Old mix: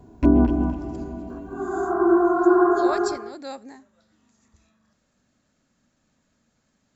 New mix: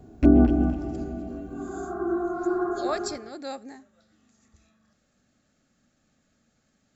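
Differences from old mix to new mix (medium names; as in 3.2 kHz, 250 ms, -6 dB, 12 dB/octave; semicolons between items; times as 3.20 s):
second sound -9.5 dB; master: add Butterworth band-stop 980 Hz, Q 6.1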